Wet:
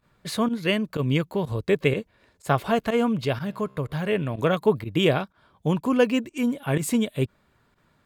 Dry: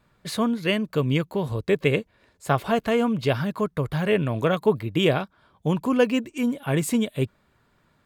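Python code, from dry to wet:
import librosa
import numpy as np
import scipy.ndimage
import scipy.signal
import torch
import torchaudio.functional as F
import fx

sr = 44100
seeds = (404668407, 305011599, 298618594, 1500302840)

y = fx.comb_fb(x, sr, f0_hz=66.0, decay_s=1.7, harmonics='all', damping=0.0, mix_pct=30, at=(3.25, 4.39))
y = fx.volume_shaper(y, sr, bpm=124, per_beat=1, depth_db=-16, release_ms=64.0, shape='fast start')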